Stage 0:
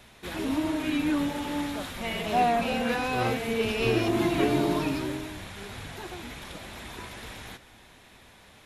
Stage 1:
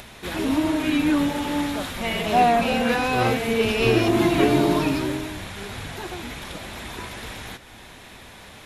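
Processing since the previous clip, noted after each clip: upward compressor, threshold -43 dBFS; trim +6 dB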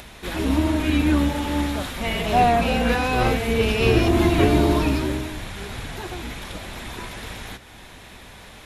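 octave divider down 2 oct, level 0 dB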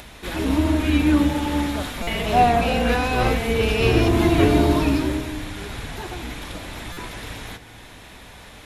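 on a send at -11.5 dB: reverberation RT60 1.4 s, pre-delay 3 ms; on the sum: buffer glitch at 2.02/6.92 s, samples 256, times 8

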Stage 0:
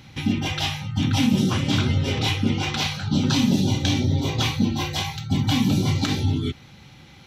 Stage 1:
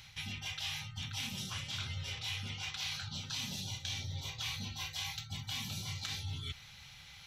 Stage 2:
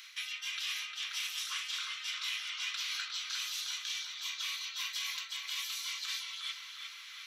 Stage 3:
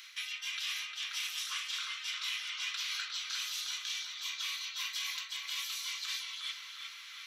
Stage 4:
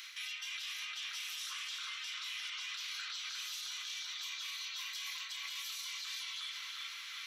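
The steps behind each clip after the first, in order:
amplifier tone stack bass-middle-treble 10-0-10; reverse; compression 4:1, threshold -40 dBFS, peak gain reduction 14 dB; reverse; trim +1 dB
Chebyshev high-pass 1.1 kHz, order 5; peak limiter -32.5 dBFS, peak gain reduction 8.5 dB; tape echo 356 ms, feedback 68%, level -3.5 dB, low-pass 3.4 kHz; trim +5 dB
reverberation RT60 0.60 s, pre-delay 8 ms, DRR 12 dB
peak limiter -36 dBFS, peak gain reduction 10.5 dB; trim +2.5 dB

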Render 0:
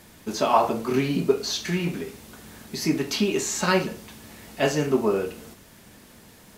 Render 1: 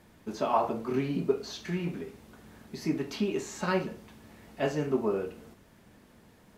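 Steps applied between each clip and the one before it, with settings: treble shelf 2.9 kHz -11 dB; trim -6 dB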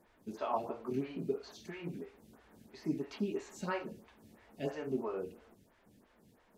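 lamp-driven phase shifter 3 Hz; trim -5 dB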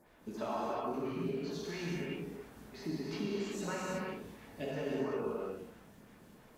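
compression, threshold -39 dBFS, peak gain reduction 10.5 dB; gated-style reverb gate 400 ms flat, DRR -5.5 dB; trim +1.5 dB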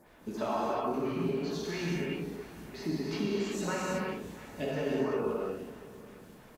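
delay 686 ms -19 dB; trim +5 dB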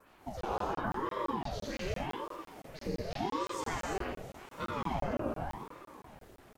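vibrato 1.8 Hz 65 cents; crackling interface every 0.17 s, samples 1024, zero, from 0.41 s; ring modulator with a swept carrier 460 Hz, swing 70%, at 0.86 Hz

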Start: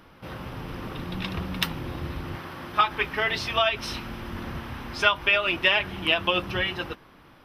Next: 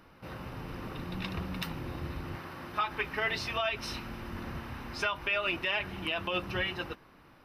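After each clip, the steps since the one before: peak limiter -15 dBFS, peak gain reduction 8 dB; band-stop 3.3 kHz, Q 9.7; trim -5 dB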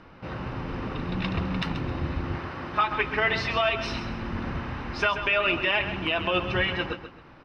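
distance through air 140 m; on a send: feedback delay 133 ms, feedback 28%, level -10 dB; on the sum: trim +8 dB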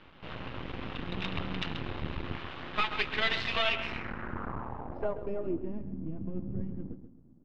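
half-wave rectifier; low-pass sweep 3.4 kHz -> 230 Hz, 3.62–5.87 s; trim -3.5 dB

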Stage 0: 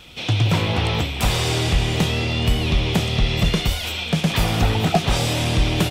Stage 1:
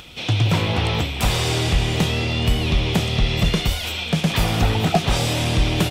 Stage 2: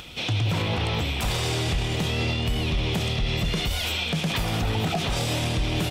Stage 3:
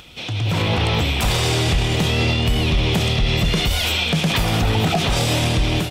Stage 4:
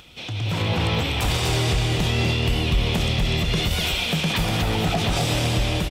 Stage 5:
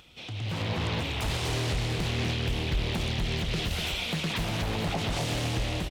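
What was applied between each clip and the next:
upward compressor, threshold -38 dBFS
peak limiter -17 dBFS, peak gain reduction 11.5 dB
level rider gain up to 9 dB; trim -2 dB
delay 246 ms -5.5 dB; trim -4.5 dB
loudspeaker Doppler distortion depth 0.65 ms; trim -7.5 dB

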